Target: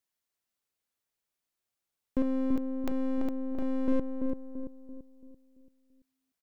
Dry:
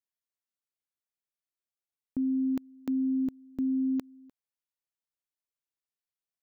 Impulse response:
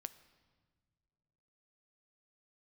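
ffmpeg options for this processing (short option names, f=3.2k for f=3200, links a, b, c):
-filter_complex "[0:a]asettb=1/sr,asplit=3[a][b][c];[a]atrim=end=2.224[d];[b]atrim=start=2.22:end=3.88,asetpts=PTS-STARTPTS,afade=t=in:d=0.004:c=qsin,afade=t=out:st=1.656:d=0.004:c=qsin,bass=f=250:g=-10,treble=f=4k:g=-1[e];[c]atrim=start=3.876[f];[d][e]acrossfade=d=0.004:c1=hsin:c2=qsin[g];[g][f]acrossfade=d=0.004:c1=qsin:c2=hsin,aeval=exprs='clip(val(0),-1,0.00447)':c=same,asplit=2[h][i];[i]adelay=337,lowpass=f=900:p=1,volume=-3.5dB,asplit=2[j][k];[k]adelay=337,lowpass=f=900:p=1,volume=0.47,asplit=2[l][m];[m]adelay=337,lowpass=f=900:p=1,volume=0.47,asplit=2[n][o];[o]adelay=337,lowpass=f=900:p=1,volume=0.47,asplit=2[p][q];[q]adelay=337,lowpass=f=900:p=1,volume=0.47,asplit=2[r][s];[s]adelay=337,lowpass=f=900:p=1,volume=0.47[t];[h][j][l][n][p][r][t]amix=inputs=7:normalize=0,volume=6.5dB"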